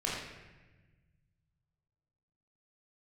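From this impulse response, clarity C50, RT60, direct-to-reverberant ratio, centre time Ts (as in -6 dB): 0.0 dB, 1.2 s, -6.0 dB, 76 ms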